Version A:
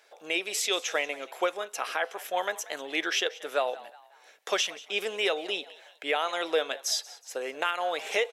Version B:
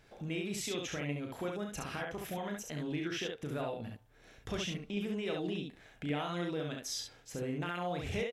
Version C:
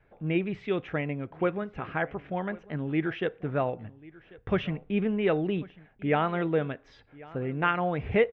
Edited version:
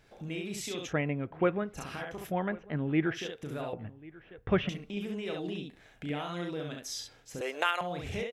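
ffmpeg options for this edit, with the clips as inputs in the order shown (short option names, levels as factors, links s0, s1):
-filter_complex "[2:a]asplit=3[s0][s1][s2];[1:a]asplit=5[s3][s4][s5][s6][s7];[s3]atrim=end=0.93[s8];[s0]atrim=start=0.87:end=1.79[s9];[s4]atrim=start=1.73:end=2.32[s10];[s1]atrim=start=2.26:end=3.19[s11];[s5]atrim=start=3.13:end=3.732[s12];[s2]atrim=start=3.728:end=4.692[s13];[s6]atrim=start=4.688:end=7.412[s14];[0:a]atrim=start=7.408:end=7.812[s15];[s7]atrim=start=7.808[s16];[s8][s9]acrossfade=d=0.06:c1=tri:c2=tri[s17];[s17][s10]acrossfade=d=0.06:c1=tri:c2=tri[s18];[s18][s11]acrossfade=d=0.06:c1=tri:c2=tri[s19];[s19][s12]acrossfade=d=0.06:c1=tri:c2=tri[s20];[s20][s13]acrossfade=d=0.004:c1=hsin:c2=hsin[s21];[s21][s14]acrossfade=d=0.004:c1=hsin:c2=hsin[s22];[s22][s15]acrossfade=d=0.004:c1=hsin:c2=hsin[s23];[s23][s16]acrossfade=d=0.004:c1=hsin:c2=hsin"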